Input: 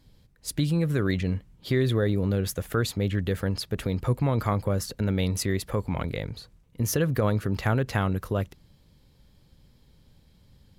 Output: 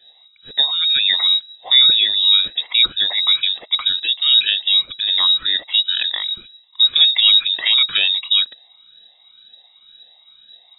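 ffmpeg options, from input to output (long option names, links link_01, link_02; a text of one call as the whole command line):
ffmpeg -i in.wav -af "afftfilt=real='re*pow(10,20/40*sin(2*PI*(1.4*log(max(b,1)*sr/1024/100)/log(2)-(-2)*(pts-256)/sr)))':imag='im*pow(10,20/40*sin(2*PI*(1.4*log(max(b,1)*sr/1024/100)/log(2)-(-2)*(pts-256)/sr)))':win_size=1024:overlap=0.75,lowpass=frequency=3300:width_type=q:width=0.5098,lowpass=frequency=3300:width_type=q:width=0.6013,lowpass=frequency=3300:width_type=q:width=0.9,lowpass=frequency=3300:width_type=q:width=2.563,afreqshift=-3900,volume=5.5dB" out.wav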